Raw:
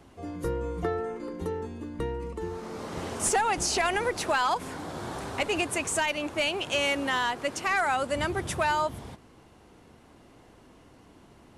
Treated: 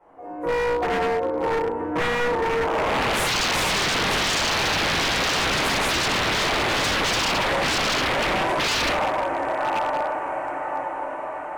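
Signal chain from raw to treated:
source passing by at 0:04.49, 8 m/s, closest 1.7 metres
notch filter 420 Hz, Q 12
automatic gain control gain up to 5 dB
octave-band graphic EQ 250/500/1,000/2,000/4,000 Hz +5/+12/+7/+10/−9 dB
downward compressor, threshold −25 dBFS, peak gain reduction 16 dB
parametric band 870 Hz +14 dB 1.5 octaves
on a send: feedback delay with all-pass diffusion 1,059 ms, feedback 56%, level −12 dB
on the sum: rectangular room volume 240 cubic metres, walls mixed, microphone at 4.7 metres
brickwall limiter −3.5 dBFS, peak gain reduction 11.5 dB
wave folding −17.5 dBFS
highs frequency-modulated by the lows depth 0.22 ms

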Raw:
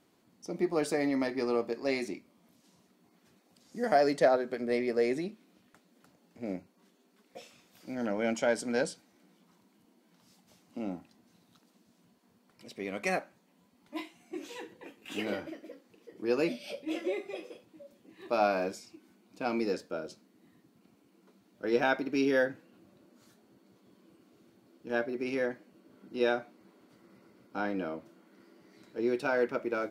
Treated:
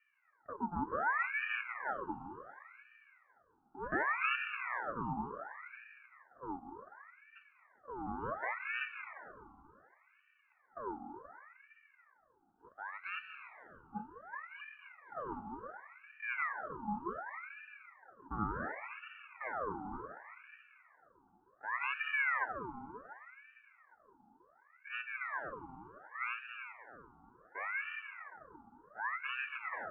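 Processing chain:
0:02.02–0:04.14: spectral envelope flattened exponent 0.6
formant resonators in series u
flat-topped bell 800 Hz +8.5 dB 1.1 octaves
convolution reverb RT60 2.8 s, pre-delay 113 ms, DRR 6 dB
ring modulator whose carrier an LFO sweeps 1,300 Hz, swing 60%, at 0.68 Hz
level +1.5 dB

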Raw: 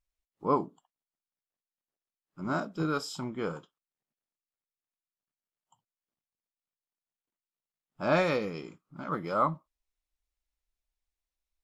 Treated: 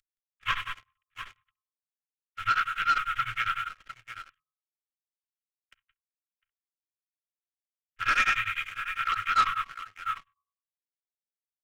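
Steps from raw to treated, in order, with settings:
variable-slope delta modulation 16 kbit/s
dynamic equaliser 2,100 Hz, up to −3 dB, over −45 dBFS, Q 1.6
Chebyshev band-stop filter 110–1,300 Hz, order 5
parametric band 65 Hz −14.5 dB 1.2 octaves
comb filter 3.7 ms, depth 47%
hum removal 75.24 Hz, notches 17
in parallel at −1.5 dB: downward compressor, threshold −44 dBFS, peak gain reduction 14 dB
on the sum: multi-tap delay 52/170/703 ms −16/−11/−12.5 dB
leveller curve on the samples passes 2
tremolo along a rectified sine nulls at 10 Hz
level +7.5 dB

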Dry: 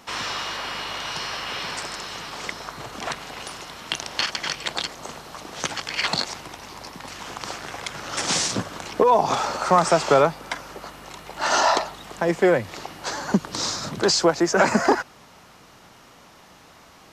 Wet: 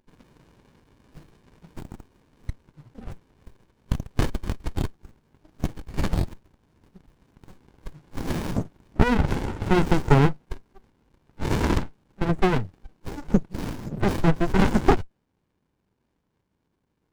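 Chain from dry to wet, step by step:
noise reduction from a noise print of the clip's start 23 dB
windowed peak hold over 65 samples
level +3 dB

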